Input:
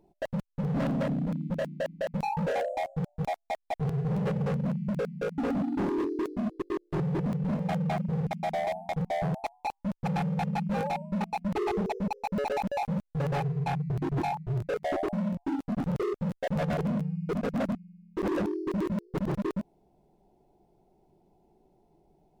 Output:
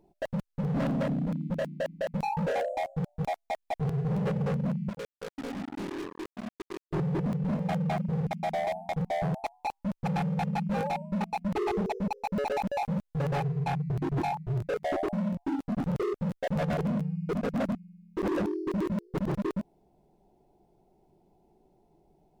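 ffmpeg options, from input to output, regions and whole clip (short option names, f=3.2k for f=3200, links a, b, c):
-filter_complex "[0:a]asettb=1/sr,asplit=3[a][b][c];[a]atrim=end=4.894[d];[b]atrim=start=4.89:end=6.91,asetpts=PTS-STARTPTS,afade=t=in:d=0.004:c=qsin,afade=t=out:st=2.016:d=0.004:c=qsin,aeval=exprs='val(0)+0.5*0.00794*sgn(val(0))':c=same,acrusher=bits=3:mix=0:aa=0.5[e];[c]atrim=start=6.906[f];[d][e]acrossfade=d=0.004:c1=hsin:c2=qsin[g];[g][f]acrossfade=d=0.004:c1=qsin:c2=hsin"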